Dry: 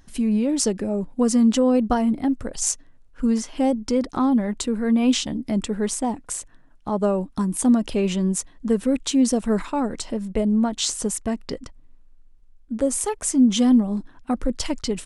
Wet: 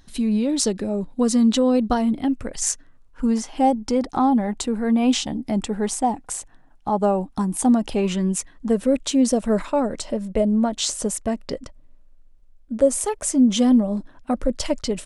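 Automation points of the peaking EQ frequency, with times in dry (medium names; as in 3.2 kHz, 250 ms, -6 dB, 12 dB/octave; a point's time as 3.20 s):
peaking EQ +10 dB 0.32 oct
2.04 s 3.9 kHz
3.32 s 790 Hz
7.99 s 790 Hz
8.33 s 3.2 kHz
8.76 s 590 Hz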